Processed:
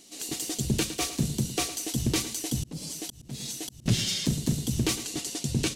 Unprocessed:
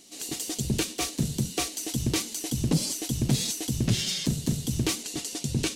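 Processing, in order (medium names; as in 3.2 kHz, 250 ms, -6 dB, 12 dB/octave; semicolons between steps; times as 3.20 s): feedback delay 109 ms, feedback 27%, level -13 dB; 2.54–3.86 s: slow attack 567 ms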